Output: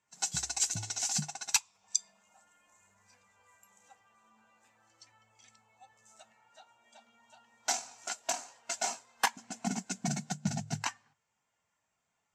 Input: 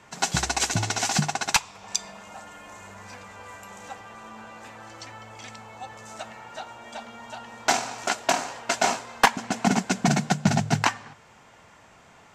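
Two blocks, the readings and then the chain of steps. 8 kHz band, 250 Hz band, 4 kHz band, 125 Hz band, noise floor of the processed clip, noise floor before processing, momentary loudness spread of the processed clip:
-3.5 dB, -13.0 dB, -9.0 dB, -12.5 dB, -82 dBFS, -53 dBFS, 7 LU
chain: pre-emphasis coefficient 0.8; spectral expander 1.5:1

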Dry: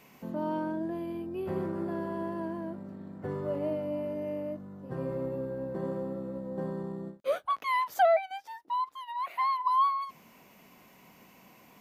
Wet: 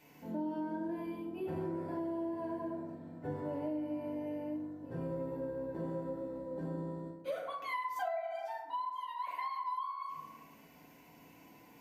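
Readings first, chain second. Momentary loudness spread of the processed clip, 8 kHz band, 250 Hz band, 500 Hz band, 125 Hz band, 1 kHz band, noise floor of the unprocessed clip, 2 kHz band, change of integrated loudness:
17 LU, n/a, -3.0 dB, -7.5 dB, -5.0 dB, -9.0 dB, -58 dBFS, -7.5 dB, -7.0 dB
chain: FDN reverb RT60 1 s, low-frequency decay 1.2×, high-frequency decay 0.45×, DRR -3.5 dB; compressor 10:1, threshold -26 dBFS, peak gain reduction 15 dB; notch 1200 Hz, Q 5.4; gain -7.5 dB

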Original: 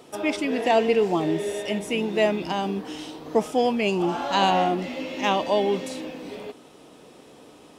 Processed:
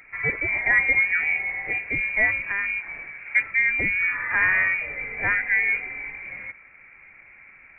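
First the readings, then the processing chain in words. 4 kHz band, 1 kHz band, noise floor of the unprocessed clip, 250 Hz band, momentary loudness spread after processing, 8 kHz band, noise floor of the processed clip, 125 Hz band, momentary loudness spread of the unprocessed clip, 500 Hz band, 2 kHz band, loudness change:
under -20 dB, -12.0 dB, -50 dBFS, -17.5 dB, 14 LU, under -40 dB, -50 dBFS, -6.5 dB, 15 LU, -17.5 dB, +14.0 dB, +2.5 dB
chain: inverted band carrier 2600 Hz

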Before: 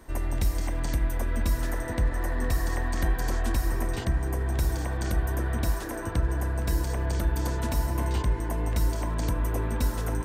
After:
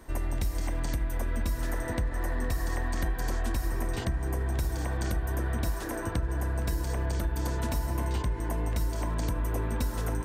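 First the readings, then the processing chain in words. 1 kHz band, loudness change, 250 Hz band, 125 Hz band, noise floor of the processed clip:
-2.5 dB, -3.0 dB, -2.5 dB, -3.0 dB, -35 dBFS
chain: compressor, threshold -25 dBFS, peak gain reduction 6 dB

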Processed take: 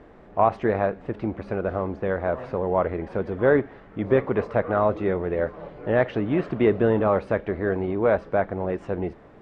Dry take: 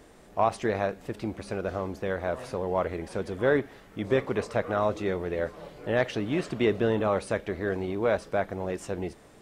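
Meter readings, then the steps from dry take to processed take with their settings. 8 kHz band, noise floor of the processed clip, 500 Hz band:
n/a, -49 dBFS, +5.0 dB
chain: LPF 1800 Hz 12 dB/oct; gain +5 dB

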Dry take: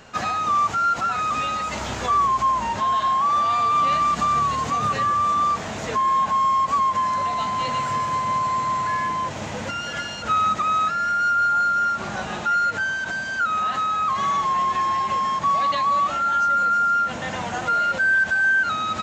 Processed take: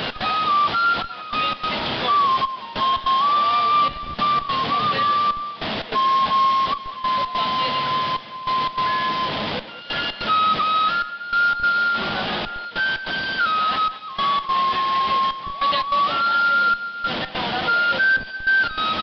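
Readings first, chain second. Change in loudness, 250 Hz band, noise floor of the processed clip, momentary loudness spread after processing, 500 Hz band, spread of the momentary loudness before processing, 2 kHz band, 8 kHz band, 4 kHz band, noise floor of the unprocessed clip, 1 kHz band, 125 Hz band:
+1.0 dB, +1.5 dB, -36 dBFS, 7 LU, +2.0 dB, 8 LU, +0.5 dB, under -15 dB, +9.5 dB, -31 dBFS, +0.5 dB, -2.0 dB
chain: delta modulation 64 kbps, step -23 dBFS; HPF 160 Hz 12 dB/oct; bell 3300 Hz +9 dB 0.53 oct; step gate "x.xxxxxxxx...x" 147 bpm -12 dB; in parallel at -11.5 dB: Schmitt trigger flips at -25 dBFS; on the sum: speakerphone echo 0.2 s, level -14 dB; downsampling 11025 Hz

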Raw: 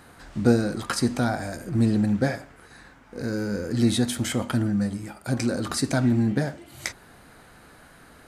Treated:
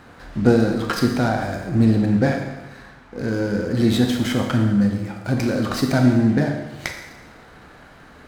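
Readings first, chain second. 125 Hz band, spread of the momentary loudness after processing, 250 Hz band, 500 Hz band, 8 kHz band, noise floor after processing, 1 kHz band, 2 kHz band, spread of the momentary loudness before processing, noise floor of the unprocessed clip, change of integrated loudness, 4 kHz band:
+5.0 dB, 14 LU, +5.5 dB, +5.5 dB, -3.5 dB, -46 dBFS, +5.5 dB, +5.0 dB, 13 LU, -51 dBFS, +5.0 dB, +2.5 dB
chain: air absorption 75 m; Schroeder reverb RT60 1.1 s, combs from 28 ms, DRR 3.5 dB; running maximum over 3 samples; gain +4.5 dB

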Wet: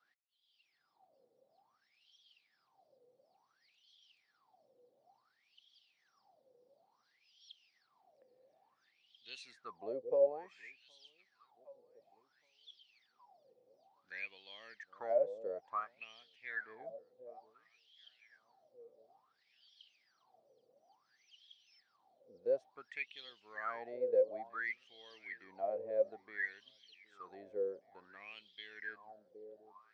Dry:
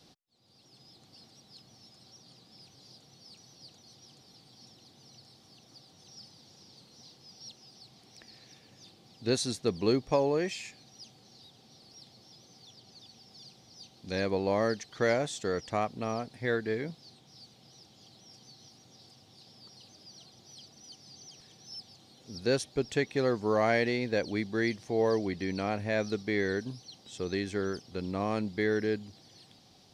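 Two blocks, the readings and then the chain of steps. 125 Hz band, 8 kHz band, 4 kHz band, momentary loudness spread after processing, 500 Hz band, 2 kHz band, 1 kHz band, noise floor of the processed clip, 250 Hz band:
under -30 dB, under -25 dB, -15.5 dB, 22 LU, -7.5 dB, -8.5 dB, -10.5 dB, -79 dBFS, -26.5 dB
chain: echo with dull and thin repeats by turns 0.766 s, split 830 Hz, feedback 52%, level -14 dB; wah 0.57 Hz 490–3300 Hz, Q 20; gain +7 dB

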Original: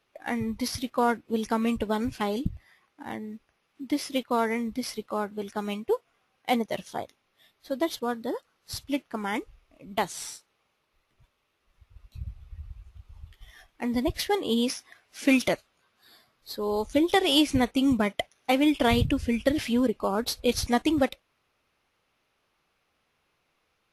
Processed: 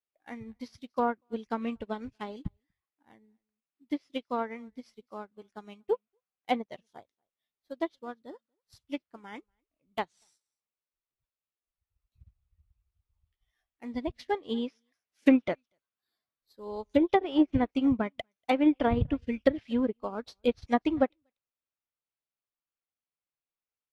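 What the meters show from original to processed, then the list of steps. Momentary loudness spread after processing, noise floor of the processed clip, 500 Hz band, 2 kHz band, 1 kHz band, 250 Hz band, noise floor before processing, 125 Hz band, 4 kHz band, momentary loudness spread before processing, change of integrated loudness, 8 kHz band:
21 LU, under -85 dBFS, -3.5 dB, -7.5 dB, -4.0 dB, -3.0 dB, -74 dBFS, -5.0 dB, -14.0 dB, 16 LU, -3.0 dB, under -25 dB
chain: echo 0.239 s -23.5 dB; treble ducked by the level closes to 870 Hz, closed at -16.5 dBFS; upward expander 2.5:1, over -39 dBFS; gain +3 dB

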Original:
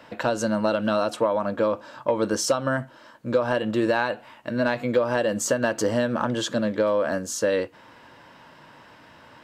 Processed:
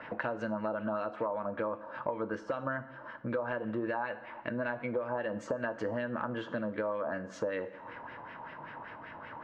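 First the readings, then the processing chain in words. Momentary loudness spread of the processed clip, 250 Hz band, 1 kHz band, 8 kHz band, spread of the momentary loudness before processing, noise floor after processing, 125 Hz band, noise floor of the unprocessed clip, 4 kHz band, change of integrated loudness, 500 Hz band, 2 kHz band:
11 LU, -11.5 dB, -8.5 dB, under -25 dB, 5 LU, -49 dBFS, -11.0 dB, -51 dBFS, -20.0 dB, -12.0 dB, -11.5 dB, -8.5 dB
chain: LFO low-pass sine 5.2 Hz 870–2300 Hz; two-slope reverb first 0.59 s, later 1.5 s, DRR 12 dB; compressor 3:1, threshold -36 dBFS, peak gain reduction 16.5 dB

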